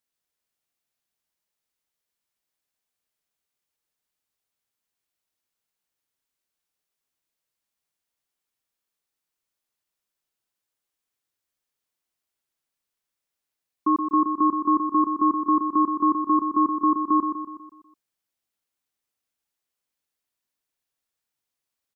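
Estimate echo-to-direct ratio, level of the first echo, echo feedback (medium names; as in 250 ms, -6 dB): -5.5 dB, -7.0 dB, 51%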